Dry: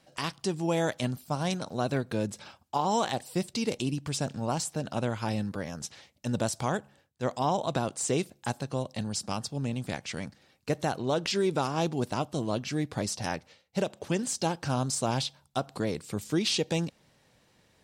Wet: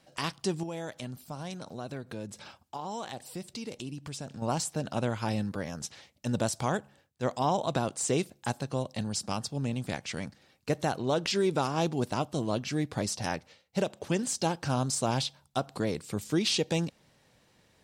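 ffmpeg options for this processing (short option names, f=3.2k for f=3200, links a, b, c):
-filter_complex "[0:a]asettb=1/sr,asplit=3[a][b][c];[a]atrim=end=0.634[d];[b]atrim=start=0.63:end=4.42,asetpts=PTS-STARTPTS,afade=t=in:d=0.004:c=qsin,afade=t=out:st=3.786:d=0.004:c=qsin,acompressor=threshold=-42dB:ratio=2:attack=3.2:release=140:knee=1:detection=peak[e];[c]atrim=start=4.416[f];[d][e]acrossfade=d=0.004:c1=hsin:c2=qsin[g];[g][f]acrossfade=d=0.004:c1=qsin:c2=hsin"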